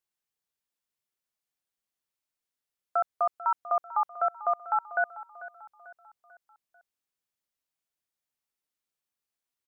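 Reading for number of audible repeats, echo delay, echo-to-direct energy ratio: 3, 443 ms, -15.0 dB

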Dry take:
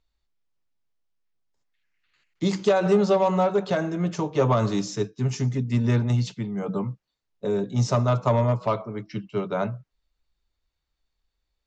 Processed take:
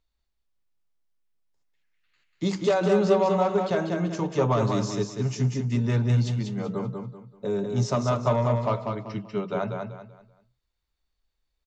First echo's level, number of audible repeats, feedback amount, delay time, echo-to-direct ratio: -5.0 dB, 3, 31%, 192 ms, -4.5 dB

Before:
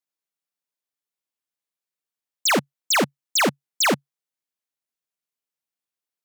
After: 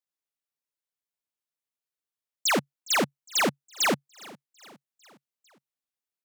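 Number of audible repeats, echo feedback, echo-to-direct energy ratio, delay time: 3, 54%, -20.5 dB, 410 ms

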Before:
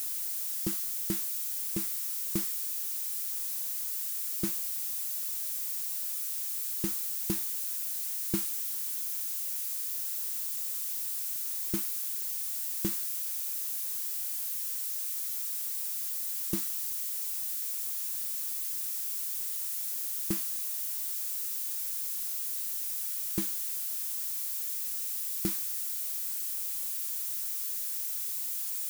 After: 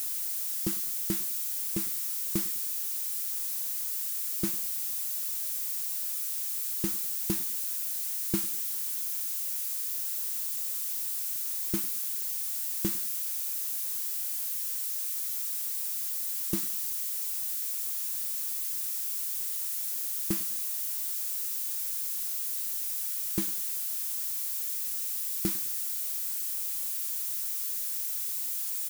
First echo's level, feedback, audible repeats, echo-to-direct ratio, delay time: -21.5 dB, 35%, 2, -21.0 dB, 101 ms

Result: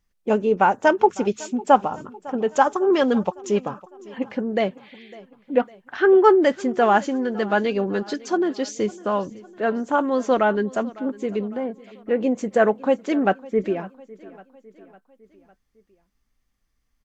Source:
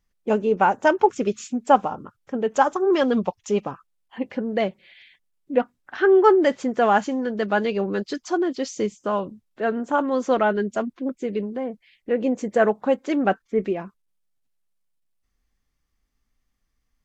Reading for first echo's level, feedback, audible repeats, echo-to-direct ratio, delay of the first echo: -21.0 dB, 53%, 3, -19.5 dB, 554 ms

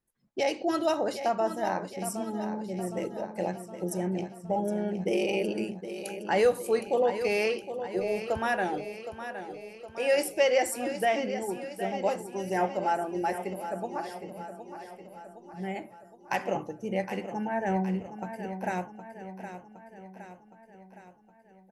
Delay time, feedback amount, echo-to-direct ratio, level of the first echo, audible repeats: 765 ms, 56%, -9.0 dB, -10.5 dB, 5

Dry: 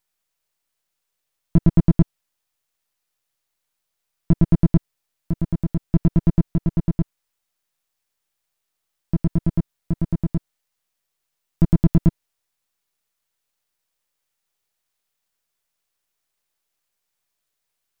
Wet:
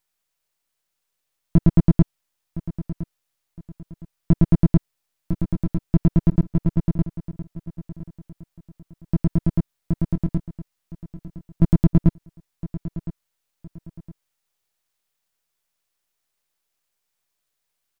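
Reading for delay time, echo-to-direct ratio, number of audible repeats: 1013 ms, -14.5 dB, 2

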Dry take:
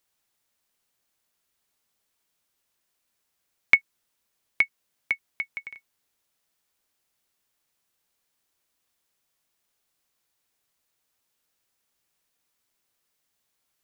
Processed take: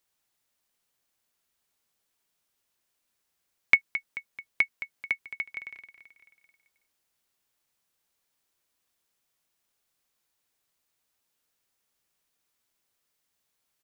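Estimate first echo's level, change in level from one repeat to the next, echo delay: -12.5 dB, -5.5 dB, 218 ms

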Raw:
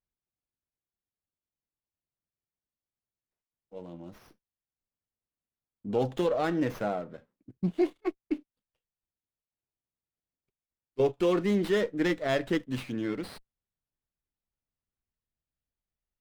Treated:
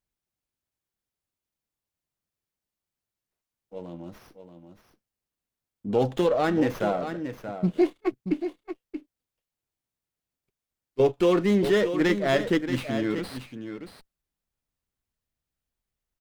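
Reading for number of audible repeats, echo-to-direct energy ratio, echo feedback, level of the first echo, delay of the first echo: 1, -9.5 dB, no regular repeats, -9.5 dB, 630 ms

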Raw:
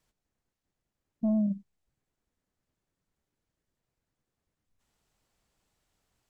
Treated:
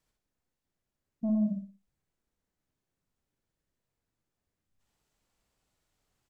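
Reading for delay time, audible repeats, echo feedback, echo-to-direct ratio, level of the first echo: 61 ms, 4, 31%, -3.5 dB, -4.0 dB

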